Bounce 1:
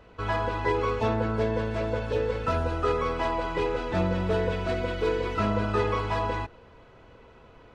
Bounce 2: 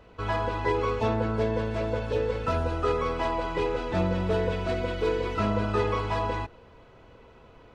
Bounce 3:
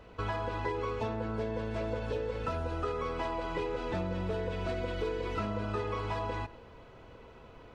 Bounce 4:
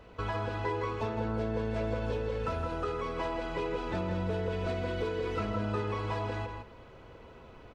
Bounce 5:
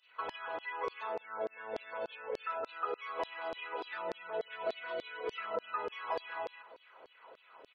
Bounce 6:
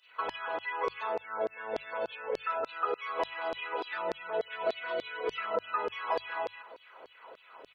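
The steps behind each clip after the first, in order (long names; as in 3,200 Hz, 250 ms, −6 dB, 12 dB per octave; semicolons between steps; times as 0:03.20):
parametric band 1,600 Hz −2 dB
downward compressor, threshold −31 dBFS, peak gain reduction 10 dB; on a send at −19 dB: convolution reverb RT60 0.40 s, pre-delay 79 ms
slap from a distant wall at 28 metres, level −6 dB
gate on every frequency bin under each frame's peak −30 dB strong; auto-filter high-pass saw down 3.4 Hz 440–4,600 Hz; level −3.5 dB
mains-hum notches 50/100/150 Hz; level +5 dB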